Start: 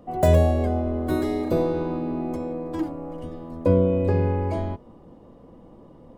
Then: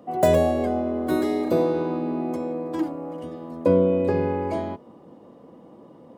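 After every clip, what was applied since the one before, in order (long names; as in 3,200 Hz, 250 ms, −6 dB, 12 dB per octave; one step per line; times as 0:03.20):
high-pass filter 180 Hz 12 dB per octave
level +2 dB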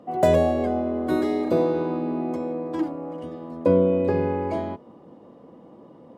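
high-shelf EQ 8,800 Hz −12 dB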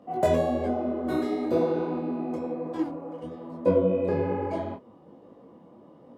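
micro pitch shift up and down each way 39 cents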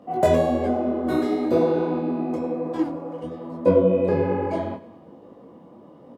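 repeating echo 103 ms, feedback 56%, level −18 dB
level +4.5 dB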